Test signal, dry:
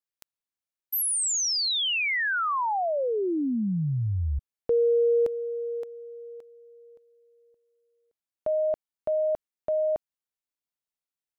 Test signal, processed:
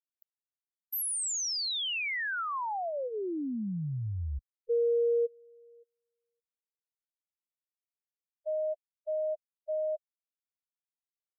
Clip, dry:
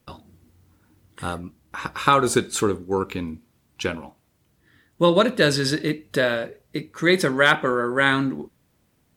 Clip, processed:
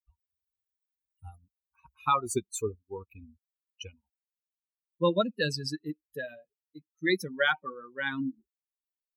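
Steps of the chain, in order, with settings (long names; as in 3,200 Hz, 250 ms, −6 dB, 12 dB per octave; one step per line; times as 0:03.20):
spectral dynamics exaggerated over time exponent 3
level −4.5 dB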